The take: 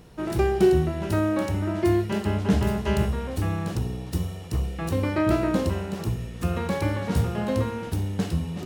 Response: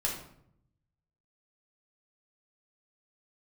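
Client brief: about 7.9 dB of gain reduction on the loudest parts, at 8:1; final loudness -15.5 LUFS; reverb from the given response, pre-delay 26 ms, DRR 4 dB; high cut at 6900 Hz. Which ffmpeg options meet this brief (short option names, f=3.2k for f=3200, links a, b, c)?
-filter_complex "[0:a]lowpass=6.9k,acompressor=threshold=-23dB:ratio=8,asplit=2[a][b];[1:a]atrim=start_sample=2205,adelay=26[c];[b][c]afir=irnorm=-1:irlink=0,volume=-9.5dB[d];[a][d]amix=inputs=2:normalize=0,volume=12dB"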